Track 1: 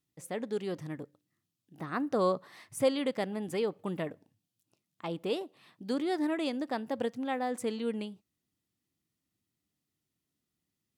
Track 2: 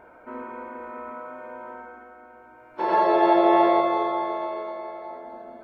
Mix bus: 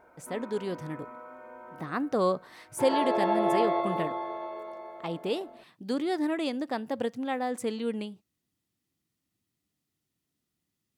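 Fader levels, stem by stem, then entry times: +2.0 dB, -8.0 dB; 0.00 s, 0.00 s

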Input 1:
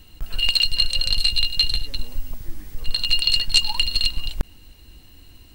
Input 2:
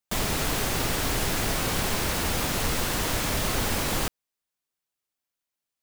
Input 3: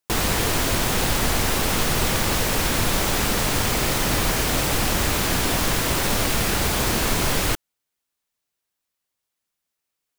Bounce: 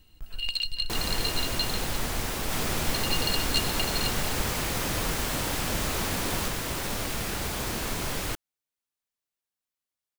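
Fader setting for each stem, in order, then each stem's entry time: -11.0 dB, -6.0 dB, -9.5 dB; 0.00 s, 2.40 s, 0.80 s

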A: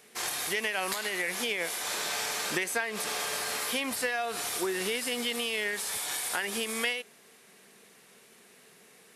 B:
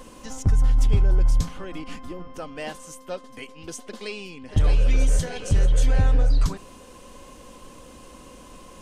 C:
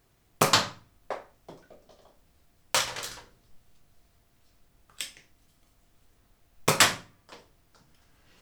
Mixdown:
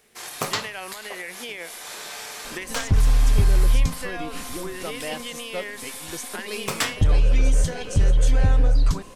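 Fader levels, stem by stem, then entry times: -3.5 dB, +1.0 dB, -5.5 dB; 0.00 s, 2.45 s, 0.00 s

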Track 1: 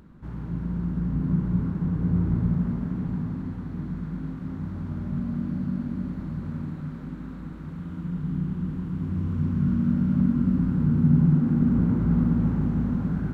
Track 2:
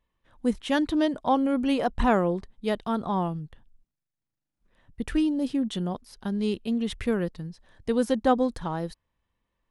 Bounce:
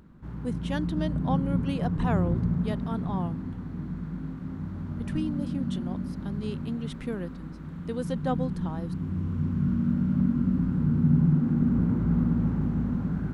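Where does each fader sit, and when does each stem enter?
-2.5 dB, -8.0 dB; 0.00 s, 0.00 s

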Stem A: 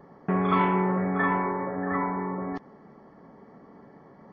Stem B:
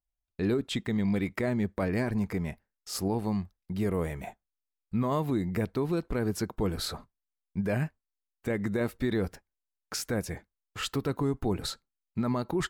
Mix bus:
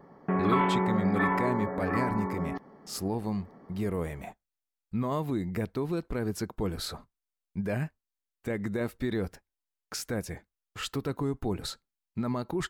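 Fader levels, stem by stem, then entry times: -2.5 dB, -2.0 dB; 0.00 s, 0.00 s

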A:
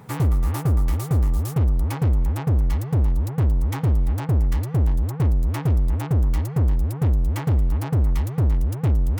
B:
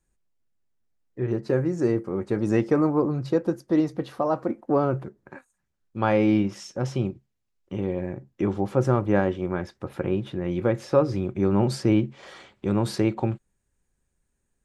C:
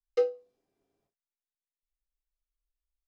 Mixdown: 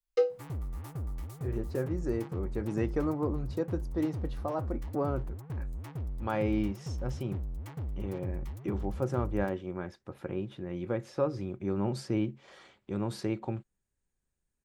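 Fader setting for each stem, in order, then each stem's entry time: -17.5 dB, -9.5 dB, 0.0 dB; 0.30 s, 0.25 s, 0.00 s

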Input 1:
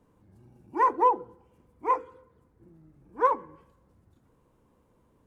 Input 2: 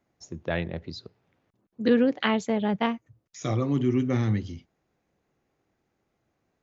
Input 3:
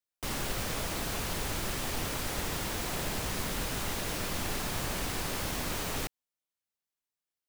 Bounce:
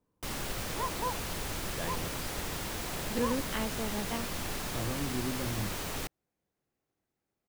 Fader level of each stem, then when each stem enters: -14.0 dB, -11.5 dB, -2.5 dB; 0.00 s, 1.30 s, 0.00 s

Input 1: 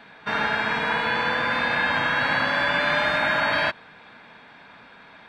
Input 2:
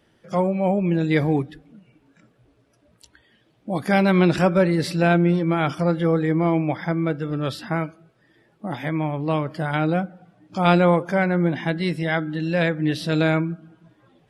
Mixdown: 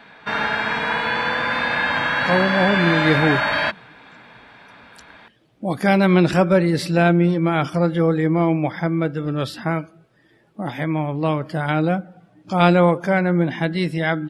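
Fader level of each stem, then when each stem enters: +2.0 dB, +2.0 dB; 0.00 s, 1.95 s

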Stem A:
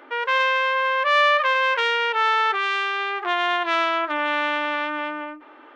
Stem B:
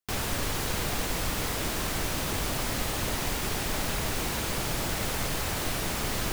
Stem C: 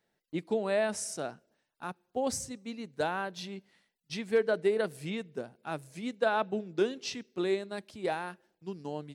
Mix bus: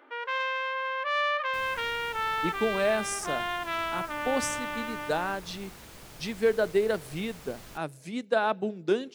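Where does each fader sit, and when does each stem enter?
-10.0 dB, -17.5 dB, +2.5 dB; 0.00 s, 1.45 s, 2.10 s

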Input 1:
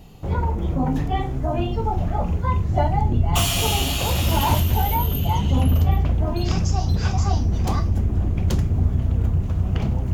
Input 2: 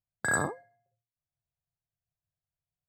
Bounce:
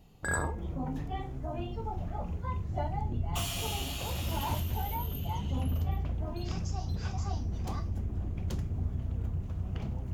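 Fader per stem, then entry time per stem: -13.5 dB, -5.0 dB; 0.00 s, 0.00 s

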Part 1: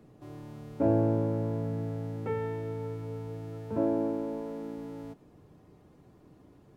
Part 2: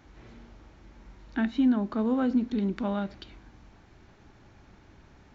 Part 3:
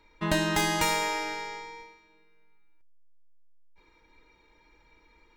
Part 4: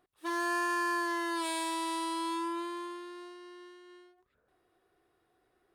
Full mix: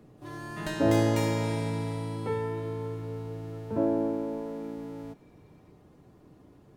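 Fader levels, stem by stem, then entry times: +1.5 dB, mute, -9.5 dB, -11.0 dB; 0.00 s, mute, 0.35 s, 0.00 s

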